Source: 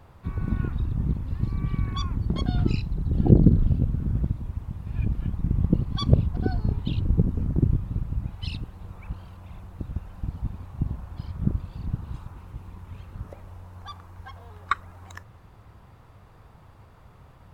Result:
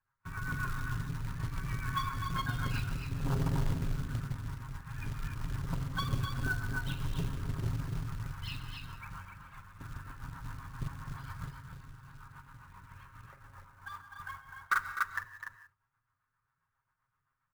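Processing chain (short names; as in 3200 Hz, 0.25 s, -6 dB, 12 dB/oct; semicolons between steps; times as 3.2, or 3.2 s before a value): graphic EQ 250/500/1000/2000 Hz -4/-6/-3/+11 dB; soft clip -19 dBFS, distortion -10 dB; gate -41 dBFS, range -29 dB; 11.45–13.92 compressor 12:1, threshold -39 dBFS, peak gain reduction 16 dB; loudspeakers at several distances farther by 15 m -8 dB, 87 m -9 dB, 100 m -6 dB; rotary speaker horn 7.5 Hz; band shelf 1200 Hz +14 dB 1.1 oct; notches 50/100/150/200/250/300/350/400 Hz; comb 7.4 ms, depth 78%; non-linear reverb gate 0.2 s rising, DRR 11.5 dB; short-mantissa float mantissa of 2-bit; gain -8.5 dB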